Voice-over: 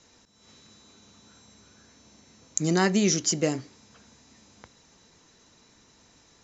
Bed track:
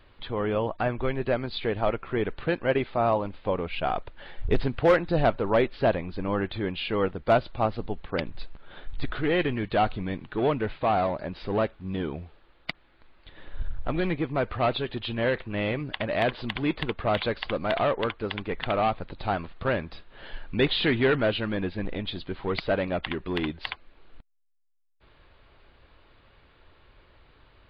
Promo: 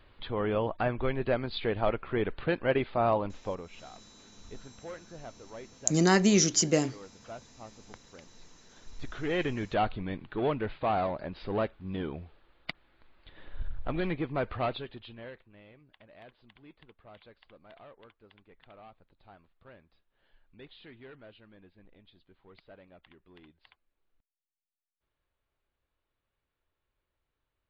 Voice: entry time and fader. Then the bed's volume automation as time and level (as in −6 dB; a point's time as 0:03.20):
3.30 s, 0.0 dB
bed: 0:03.37 −2.5 dB
0:03.88 −23 dB
0:08.24 −23 dB
0:09.42 −4.5 dB
0:14.57 −4.5 dB
0:15.64 −27.5 dB